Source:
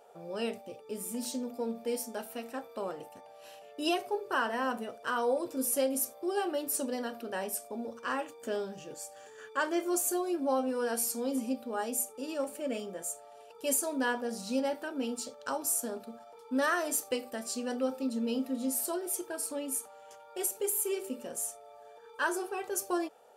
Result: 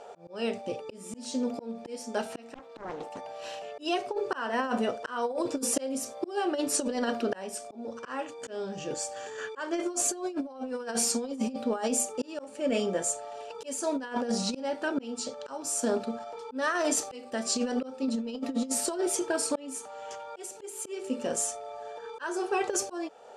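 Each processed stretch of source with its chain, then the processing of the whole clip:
2.55–3.18 s: high-pass 320 Hz 6 dB/octave + bass shelf 490 Hz +5.5 dB + loudspeaker Doppler distortion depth 0.75 ms
whole clip: low-pass 7.7 kHz 24 dB/octave; slow attack 479 ms; compressor with a negative ratio -37 dBFS, ratio -0.5; trim +9 dB

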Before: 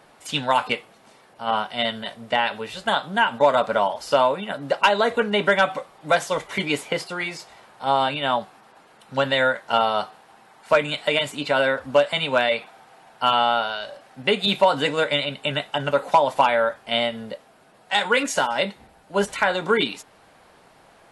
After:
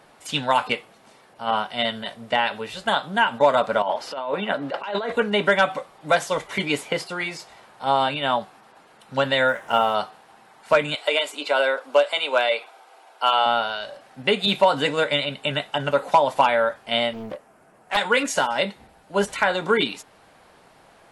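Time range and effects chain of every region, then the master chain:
3.82–5.12 s: three-band isolator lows -14 dB, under 180 Hz, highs -12 dB, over 4.1 kHz + compressor with a negative ratio -26 dBFS
9.48–9.95 s: companding laws mixed up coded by mu + peaking EQ 4.3 kHz -13.5 dB 0.37 oct
10.95–13.46 s: high-pass 350 Hz 24 dB/octave + band-stop 1.8 kHz, Q 9.1
17.13–17.97 s: peaking EQ 3.8 kHz -12.5 dB 0.91 oct + doubling 27 ms -9 dB + loudspeaker Doppler distortion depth 0.88 ms
whole clip: none

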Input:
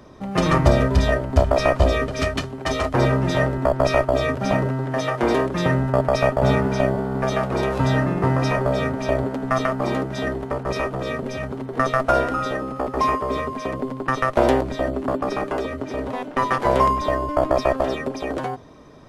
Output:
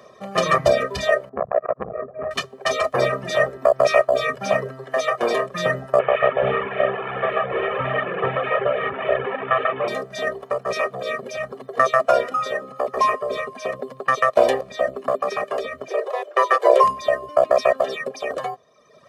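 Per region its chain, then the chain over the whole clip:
1.29–2.31 s: Gaussian low-pass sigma 7.2 samples + hum notches 50/100/150/200/250 Hz + transformer saturation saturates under 690 Hz
5.99–9.88 s: one-bit delta coder 16 kbps, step -16 dBFS + low-pass 2.2 kHz + comb 2.3 ms, depth 33%
15.88–16.84 s: Chebyshev high-pass 340 Hz, order 6 + bass shelf 500 Hz +9 dB
whole clip: reverb removal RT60 1.1 s; high-pass 270 Hz 12 dB/octave; comb 1.7 ms, depth 83%

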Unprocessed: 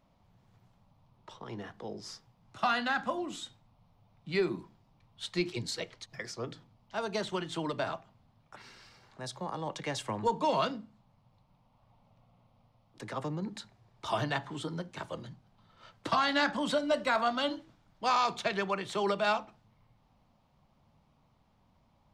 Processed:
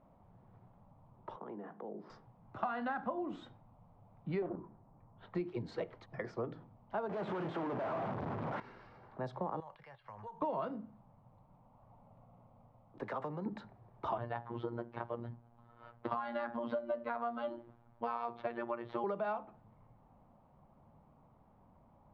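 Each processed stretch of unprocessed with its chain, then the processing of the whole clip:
1.36–2.10 s: steep high-pass 160 Hz + distance through air 330 m + compression 4:1, threshold -48 dBFS
4.42–5.35 s: low-pass 1.7 kHz + loudspeaker Doppler distortion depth 0.64 ms
7.09–8.60 s: one-bit comparator + high-pass 120 Hz + treble shelf 8.5 kHz -10.5 dB
9.60–10.42 s: amplifier tone stack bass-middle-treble 10-0-10 + compression 5:1, threshold -49 dBFS + careless resampling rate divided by 6×, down filtered, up hold
13.03–13.46 s: compression 2.5:1, threshold -37 dBFS + tilt EQ +2.5 dB/octave + band-stop 320 Hz, Q 8
14.18–19.04 s: Savitzky-Golay filter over 15 samples + robot voice 118 Hz
whole clip: low-pass 1 kHz 12 dB/octave; bass shelf 240 Hz -6 dB; compression 6:1, threshold -42 dBFS; trim +7.5 dB

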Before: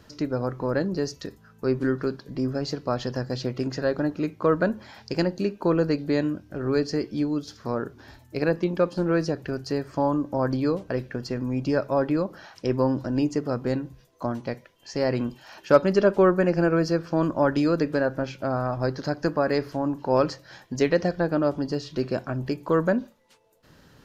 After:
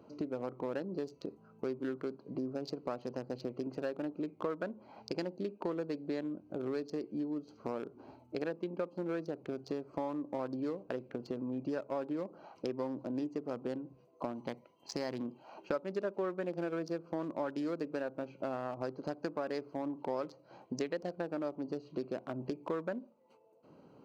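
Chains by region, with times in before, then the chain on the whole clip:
14.38–15.23 s: treble shelf 4.7 kHz +9.5 dB + comb 1 ms, depth 35% + companded quantiser 8-bit
whole clip: local Wiener filter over 25 samples; high-pass 240 Hz 12 dB/octave; compression 4:1, threshold -37 dBFS; trim +1 dB

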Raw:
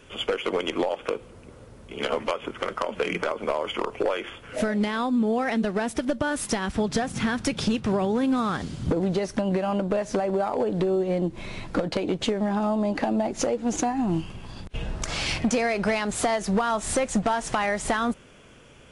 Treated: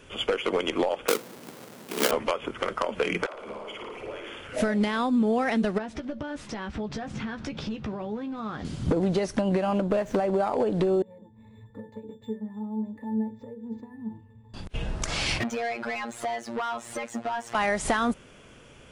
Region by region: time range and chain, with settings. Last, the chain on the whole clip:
1.08–2.11 s: square wave that keeps the level + high-pass 170 Hz 24 dB/octave + treble shelf 6.2 kHz +7 dB
3.26–4.48 s: compression, threshold -37 dBFS + phase dispersion lows, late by 89 ms, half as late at 310 Hz + flutter echo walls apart 9.8 m, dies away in 0.93 s
5.78–8.65 s: compression 10:1, threshold -30 dBFS + distance through air 140 m + doubling 14 ms -7.5 dB
9.73–10.34 s: median filter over 9 samples + loudspeaker Doppler distortion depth 0.1 ms
11.02–14.54 s: pitch-class resonator A, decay 0.24 s + de-hum 121 Hz, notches 6 + decimation joined by straight lines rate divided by 4×
15.40–17.55 s: robot voice 117 Hz + inverted gate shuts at -20 dBFS, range -26 dB + overdrive pedal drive 36 dB, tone 2.8 kHz, clips at -18 dBFS
whole clip: none

